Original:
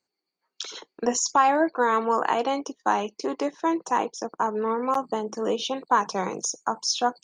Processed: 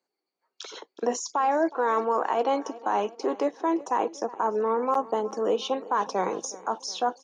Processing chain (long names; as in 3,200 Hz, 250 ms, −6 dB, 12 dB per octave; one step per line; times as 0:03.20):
high-shelf EQ 4,800 Hz +8 dB
brickwall limiter −14.5 dBFS, peak gain reduction 6.5 dB
high-pass filter 500 Hz 12 dB per octave
spectral tilt −4.5 dB per octave
repeating echo 367 ms, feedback 55%, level −20.5 dB
reversed playback
downward compressor, threshold −21 dBFS, peak gain reduction 4.5 dB
reversed playback
level +1.5 dB